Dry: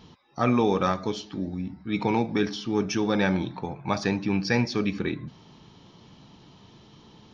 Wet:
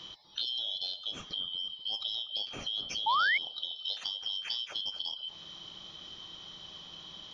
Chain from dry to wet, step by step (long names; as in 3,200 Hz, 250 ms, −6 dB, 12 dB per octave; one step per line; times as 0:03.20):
band-splitting scrambler in four parts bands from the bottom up 3412
dynamic equaliser 1,800 Hz, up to −6 dB, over −45 dBFS, Q 2.4
downward compressor 6 to 1, threshold −38 dBFS, peak gain reduction 18 dB
bucket-brigade delay 242 ms, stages 2,048, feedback 39%, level −9.5 dB
sound drawn into the spectrogram rise, 0:03.06–0:03.38, 840–2,300 Hz −31 dBFS
level +4 dB